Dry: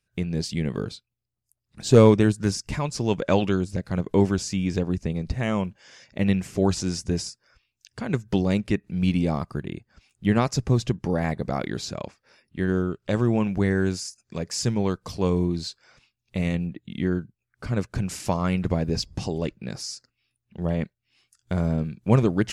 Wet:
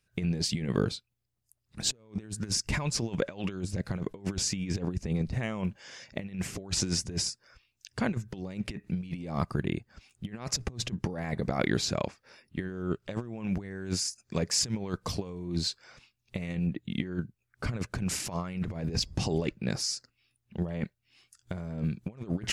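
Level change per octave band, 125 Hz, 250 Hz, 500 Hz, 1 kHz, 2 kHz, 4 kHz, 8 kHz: −8.5, −9.0, −11.5, −9.0, −5.0, +1.0, +2.0 decibels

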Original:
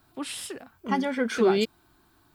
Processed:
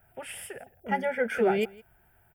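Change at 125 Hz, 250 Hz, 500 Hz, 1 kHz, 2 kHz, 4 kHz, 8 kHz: can't be measured, −6.5 dB, −1.5 dB, −0.5 dB, +1.0 dB, −9.0 dB, −5.5 dB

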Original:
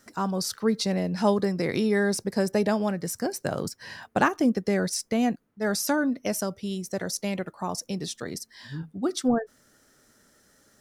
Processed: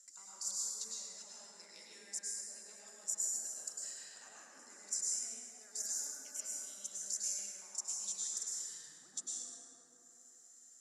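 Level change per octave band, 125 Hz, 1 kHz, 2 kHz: below −40 dB, −31.5 dB, −26.0 dB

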